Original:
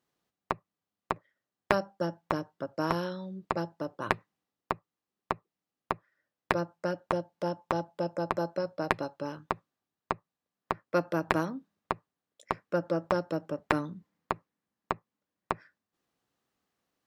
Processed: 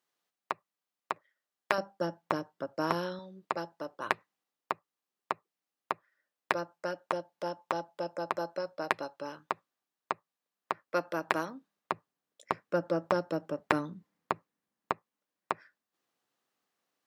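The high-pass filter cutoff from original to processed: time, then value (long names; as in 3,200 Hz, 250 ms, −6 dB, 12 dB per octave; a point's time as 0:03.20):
high-pass filter 6 dB per octave
850 Hz
from 0:01.78 220 Hz
from 0:03.19 580 Hz
from 0:11.92 160 Hz
from 0:14.92 420 Hz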